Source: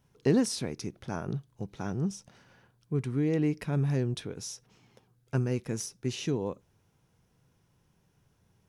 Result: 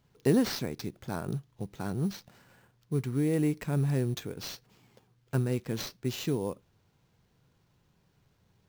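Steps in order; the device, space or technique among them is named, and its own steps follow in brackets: early companding sampler (sample-rate reducer 10000 Hz, jitter 0%; companded quantiser 8-bit)

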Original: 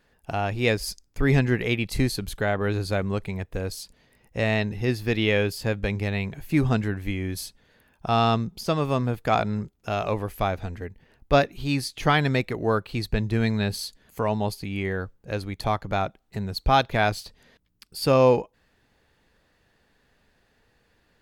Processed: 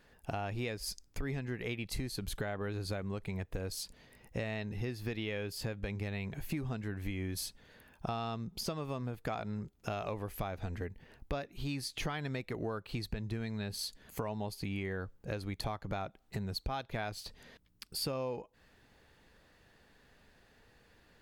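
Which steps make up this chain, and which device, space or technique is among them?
serial compression, peaks first (compressor 10:1, threshold -30 dBFS, peak gain reduction 17 dB; compressor 1.5:1, threshold -42 dBFS, peak gain reduction 5.5 dB); gain +1 dB

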